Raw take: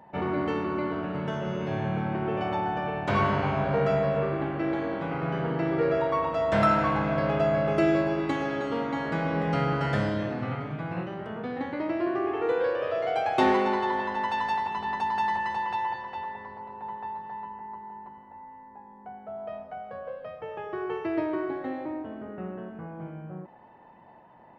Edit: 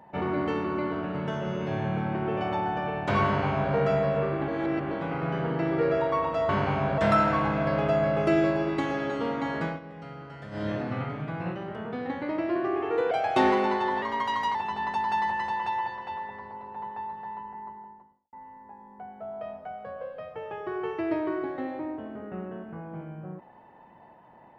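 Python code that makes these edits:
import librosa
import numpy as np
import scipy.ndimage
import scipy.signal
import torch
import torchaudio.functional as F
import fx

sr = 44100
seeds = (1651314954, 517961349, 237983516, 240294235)

y = fx.studio_fade_out(x, sr, start_s=17.64, length_s=0.75)
y = fx.edit(y, sr, fx.duplicate(start_s=3.25, length_s=0.49, to_s=6.49),
    fx.reverse_span(start_s=4.48, length_s=0.43),
    fx.fade_down_up(start_s=9.07, length_s=1.19, db=-16.0, fade_s=0.24, curve='qsin'),
    fx.cut(start_s=12.62, length_s=0.51),
    fx.speed_span(start_s=14.04, length_s=0.57, speed=1.08), tone=tone)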